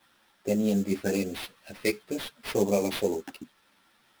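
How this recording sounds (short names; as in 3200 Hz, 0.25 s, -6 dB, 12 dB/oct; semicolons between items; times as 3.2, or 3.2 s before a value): aliases and images of a low sample rate 7100 Hz, jitter 20%; a shimmering, thickened sound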